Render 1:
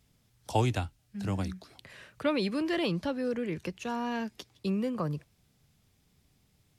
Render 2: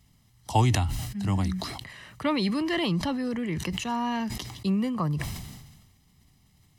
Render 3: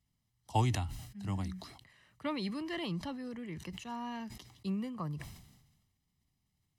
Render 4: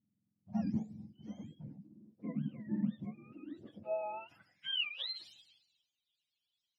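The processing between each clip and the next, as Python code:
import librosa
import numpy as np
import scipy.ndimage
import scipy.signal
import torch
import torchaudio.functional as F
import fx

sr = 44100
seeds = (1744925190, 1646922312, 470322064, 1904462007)

y1 = x + 0.55 * np.pad(x, (int(1.0 * sr / 1000.0), 0))[:len(x)]
y1 = fx.sustainer(y1, sr, db_per_s=42.0)
y1 = y1 * 10.0 ** (3.0 / 20.0)
y2 = fx.upward_expand(y1, sr, threshold_db=-41.0, expansion=1.5)
y2 = y2 * 10.0 ** (-7.0 / 20.0)
y3 = fx.octave_mirror(y2, sr, pivot_hz=780.0)
y3 = fx.filter_sweep_bandpass(y3, sr, from_hz=220.0, to_hz=3300.0, start_s=3.27, end_s=4.92, q=4.4)
y3 = y3 * 10.0 ** (9.5 / 20.0)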